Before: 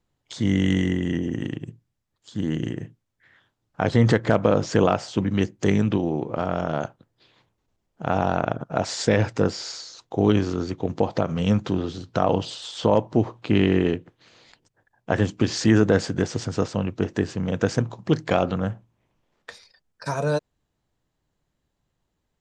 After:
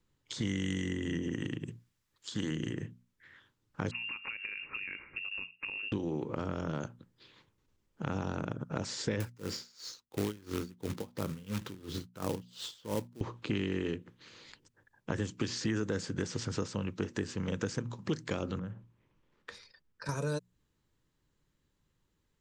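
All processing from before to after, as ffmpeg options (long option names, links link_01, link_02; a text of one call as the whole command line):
ffmpeg -i in.wav -filter_complex "[0:a]asettb=1/sr,asplit=3[link_01][link_02][link_03];[link_01]atrim=end=1.684[link_04];[link_02]atrim=start=1.68:end=2.51,asetpts=PTS-STARTPTS,afade=type=in:duration=0.004:curve=qsin,afade=type=out:start_time=0.826:duration=0.004:curve=qsin,lowshelf=frequency=380:gain=-9,acontrast=48[link_05];[link_03]atrim=start=2.506[link_06];[link_04][link_05]acrossfade=duration=0.004:curve1=hsin:curve2=qsin[link_07];[link_07][link_06]acrossfade=duration=0.004:curve1=qsin:curve2=hsin,asettb=1/sr,asplit=3[link_08][link_09][link_10];[link_08]atrim=end=3.914[link_11];[link_09]atrim=start=3.91:end=5.92,asetpts=PTS-STARTPTS,afade=type=in:duration=0.004:curve=qsin,afade=type=out:start_time=2.006:duration=0.004:curve=qsin,acompressor=threshold=-23dB:ratio=6:attack=3.2:release=140:knee=1:detection=peak,lowpass=frequency=2500:width_type=q:width=0.5098,lowpass=frequency=2500:width_type=q:width=0.6013,lowpass=frequency=2500:width_type=q:width=0.9,lowpass=frequency=2500:width_type=q:width=2.563,afreqshift=-2900[link_12];[link_10]atrim=start=5.916[link_13];[link_11][link_12]acrossfade=duration=0.004:curve1=hsin:curve2=qsin[link_14];[link_14][link_13]acrossfade=duration=0.004:curve1=qsin:curve2=hsin,asettb=1/sr,asplit=3[link_15][link_16][link_17];[link_15]atrim=end=9.204[link_18];[link_16]atrim=start=9.2:end=13.21,asetpts=PTS-STARTPTS,afade=type=in:duration=0.004:curve=qsin,afade=type=out:start_time=4.006:duration=0.004:curve=qsin,acrusher=bits=3:mode=log:mix=0:aa=0.000001,aeval=exprs='val(0)*pow(10,-28*(0.5-0.5*cos(2*PI*2.9*n/s))/20)':channel_layout=same[link_19];[link_17]atrim=start=13.206[link_20];[link_18][link_19]acrossfade=duration=0.004:curve1=hsin:curve2=qsin[link_21];[link_21][link_20]acrossfade=duration=0.004:curve1=qsin:curve2=hsin,asettb=1/sr,asplit=3[link_22][link_23][link_24];[link_22]atrim=end=18.594[link_25];[link_23]atrim=start=18.59:end=20.09,asetpts=PTS-STARTPTS,afade=type=in:duration=0.004:curve=qsin,afade=type=out:start_time=1.496:duration=0.004:curve=qsin,highshelf=frequency=5000:gain=-10,acompressor=threshold=-38dB:ratio=2.5:attack=3.2:release=140:knee=1:detection=peak[link_26];[link_24]atrim=start=20.086[link_27];[link_25][link_26]acrossfade=duration=0.004:curve1=hsin:curve2=qsin[link_28];[link_28][link_27]acrossfade=duration=0.004:curve1=qsin:curve2=hsin,equalizer=frequency=700:width=3.3:gain=-12.5,bandreject=frequency=60:width_type=h:width=6,bandreject=frequency=120:width_type=h:width=6,bandreject=frequency=180:width_type=h:width=6,bandreject=frequency=240:width_type=h:width=6,acrossover=split=500|6000[link_29][link_30][link_31];[link_29]acompressor=threshold=-34dB:ratio=4[link_32];[link_30]acompressor=threshold=-41dB:ratio=4[link_33];[link_31]acompressor=threshold=-48dB:ratio=4[link_34];[link_32][link_33][link_34]amix=inputs=3:normalize=0" out.wav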